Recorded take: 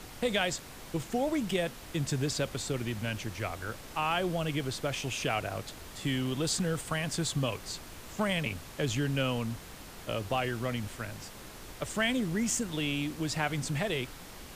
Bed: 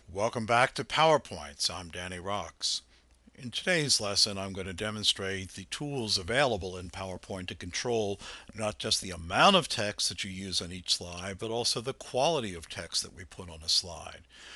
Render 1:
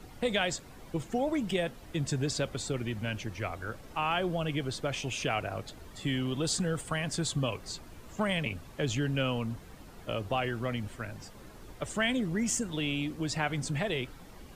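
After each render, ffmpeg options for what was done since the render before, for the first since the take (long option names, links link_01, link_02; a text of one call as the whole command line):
ffmpeg -i in.wav -af "afftdn=noise_reduction=10:noise_floor=-47" out.wav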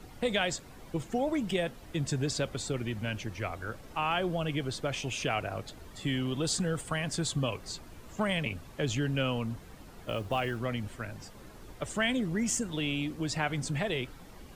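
ffmpeg -i in.wav -filter_complex "[0:a]asettb=1/sr,asplit=3[link_01][link_02][link_03];[link_01]atrim=end=10.064[link_04];[link_02]atrim=start=10.06:end=10.58,asetpts=PTS-STARTPTS,afade=type=in:duration=0.004:curve=qsin,afade=type=out:start_time=0.516:duration=0.004:curve=qsin,acrusher=bits=7:mode=log:mix=0:aa=0.000001[link_05];[link_03]atrim=start=10.576[link_06];[link_04][link_05]acrossfade=duration=0.004:curve1=hsin:curve2=qsin[link_07];[link_07][link_06]acrossfade=duration=0.004:curve1=qsin:curve2=hsin" out.wav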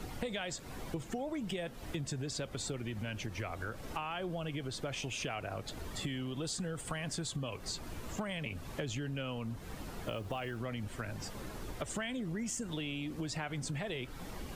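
ffmpeg -i in.wav -filter_complex "[0:a]asplit=2[link_01][link_02];[link_02]alimiter=level_in=5dB:limit=-24dB:level=0:latency=1:release=81,volume=-5dB,volume=0dB[link_03];[link_01][link_03]amix=inputs=2:normalize=0,acompressor=threshold=-36dB:ratio=6" out.wav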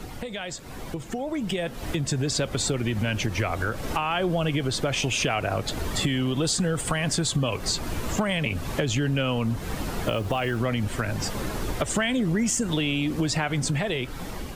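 ffmpeg -i in.wav -filter_complex "[0:a]asplit=2[link_01][link_02];[link_02]alimiter=level_in=5.5dB:limit=-24dB:level=0:latency=1:release=241,volume=-5.5dB,volume=-1dB[link_03];[link_01][link_03]amix=inputs=2:normalize=0,dynaudnorm=framelen=630:gausssize=5:maxgain=8.5dB" out.wav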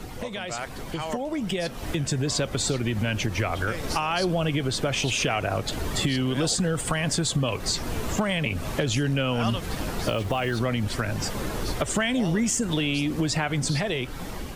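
ffmpeg -i in.wav -i bed.wav -filter_complex "[1:a]volume=-10dB[link_01];[0:a][link_01]amix=inputs=2:normalize=0" out.wav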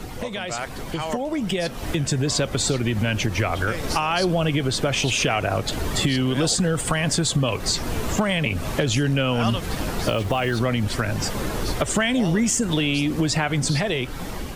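ffmpeg -i in.wav -af "volume=3.5dB" out.wav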